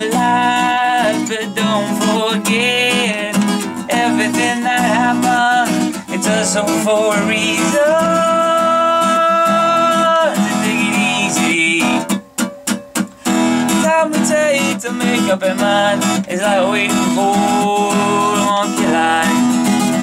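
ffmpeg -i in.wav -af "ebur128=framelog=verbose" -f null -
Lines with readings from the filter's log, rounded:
Integrated loudness:
  I:         -14.1 LUFS
  Threshold: -24.1 LUFS
Loudness range:
  LRA:         2.5 LU
  Threshold: -34.1 LUFS
  LRA low:   -15.2 LUFS
  LRA high:  -12.7 LUFS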